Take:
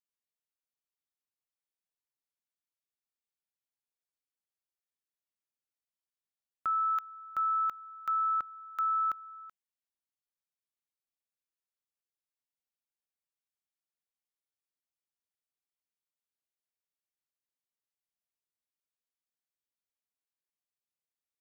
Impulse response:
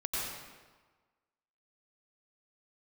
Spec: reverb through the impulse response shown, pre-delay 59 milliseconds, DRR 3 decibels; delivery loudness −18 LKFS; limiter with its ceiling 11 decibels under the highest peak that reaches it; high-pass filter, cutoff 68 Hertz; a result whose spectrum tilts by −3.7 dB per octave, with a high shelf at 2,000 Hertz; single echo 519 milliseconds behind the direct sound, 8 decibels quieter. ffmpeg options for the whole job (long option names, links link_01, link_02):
-filter_complex "[0:a]highpass=68,highshelf=frequency=2000:gain=-4,alimiter=level_in=13.5dB:limit=-24dB:level=0:latency=1,volume=-13.5dB,aecho=1:1:519:0.398,asplit=2[link_01][link_02];[1:a]atrim=start_sample=2205,adelay=59[link_03];[link_02][link_03]afir=irnorm=-1:irlink=0,volume=-8.5dB[link_04];[link_01][link_04]amix=inputs=2:normalize=0,volume=19.5dB"